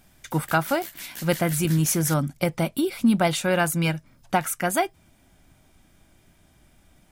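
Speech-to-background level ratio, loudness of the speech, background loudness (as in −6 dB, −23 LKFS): 14.0 dB, −24.0 LKFS, −38.0 LKFS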